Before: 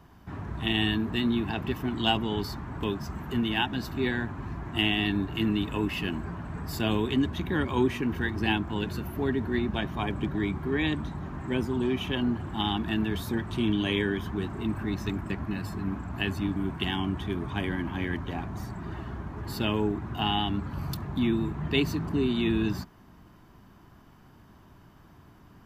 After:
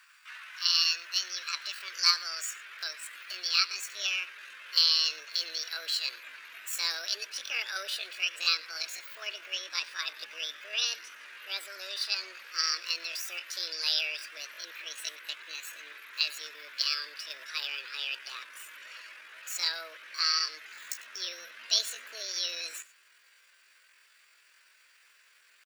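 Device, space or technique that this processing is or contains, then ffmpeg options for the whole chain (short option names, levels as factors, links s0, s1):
chipmunk voice: -af "tiltshelf=f=660:g=-6,aecho=1:1:101:0.0944,asubboost=boost=12:cutoff=210,asetrate=68011,aresample=44100,atempo=0.64842,highpass=f=1200:w=0.5412,highpass=f=1200:w=1.3066"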